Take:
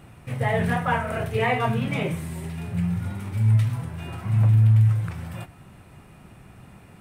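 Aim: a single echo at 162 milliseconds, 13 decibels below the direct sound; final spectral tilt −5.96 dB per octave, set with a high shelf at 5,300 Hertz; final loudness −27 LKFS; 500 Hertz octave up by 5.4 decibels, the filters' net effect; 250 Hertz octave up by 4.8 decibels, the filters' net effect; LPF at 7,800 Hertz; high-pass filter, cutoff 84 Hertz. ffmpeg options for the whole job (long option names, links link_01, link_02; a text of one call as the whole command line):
ffmpeg -i in.wav -af "highpass=84,lowpass=7800,equalizer=frequency=250:width_type=o:gain=6.5,equalizer=frequency=500:width_type=o:gain=5,highshelf=frequency=5300:gain=7.5,aecho=1:1:162:0.224,volume=-5dB" out.wav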